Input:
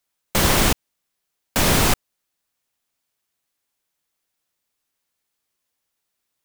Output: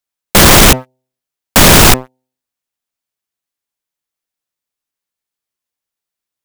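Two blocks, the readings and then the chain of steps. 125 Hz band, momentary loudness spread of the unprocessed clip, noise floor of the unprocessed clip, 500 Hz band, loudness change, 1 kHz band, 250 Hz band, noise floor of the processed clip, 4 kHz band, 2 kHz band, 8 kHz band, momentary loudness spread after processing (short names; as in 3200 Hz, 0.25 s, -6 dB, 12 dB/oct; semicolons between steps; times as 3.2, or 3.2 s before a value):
+12.0 dB, 10 LU, -79 dBFS, +12.5 dB, +13.0 dB, +12.5 dB, +12.5 dB, -84 dBFS, +13.5 dB, +13.0 dB, +13.5 dB, 10 LU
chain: de-hum 128.7 Hz, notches 7; sample leveller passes 5; gain +3.5 dB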